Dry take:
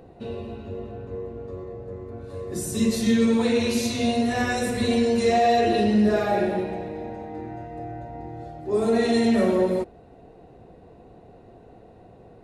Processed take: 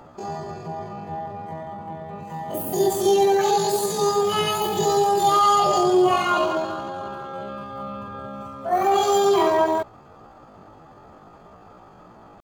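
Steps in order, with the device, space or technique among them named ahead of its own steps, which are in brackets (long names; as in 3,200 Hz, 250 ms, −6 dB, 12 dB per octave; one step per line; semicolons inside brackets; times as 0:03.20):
chipmunk voice (pitch shifter +9.5 semitones)
level +2 dB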